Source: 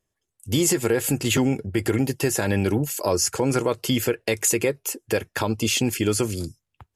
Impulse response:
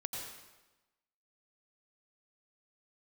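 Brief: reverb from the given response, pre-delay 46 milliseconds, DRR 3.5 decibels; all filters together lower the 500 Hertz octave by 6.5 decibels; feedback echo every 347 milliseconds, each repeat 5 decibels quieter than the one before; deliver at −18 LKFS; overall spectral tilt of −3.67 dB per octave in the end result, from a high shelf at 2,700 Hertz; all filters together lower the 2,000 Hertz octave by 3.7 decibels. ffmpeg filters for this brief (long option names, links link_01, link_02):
-filter_complex "[0:a]equalizer=frequency=500:width_type=o:gain=-8.5,equalizer=frequency=2000:width_type=o:gain=-6,highshelf=frequency=2700:gain=3,aecho=1:1:347|694|1041|1388|1735|2082|2429:0.562|0.315|0.176|0.0988|0.0553|0.031|0.0173,asplit=2[link_01][link_02];[1:a]atrim=start_sample=2205,adelay=46[link_03];[link_02][link_03]afir=irnorm=-1:irlink=0,volume=-4dB[link_04];[link_01][link_04]amix=inputs=2:normalize=0,volume=2.5dB"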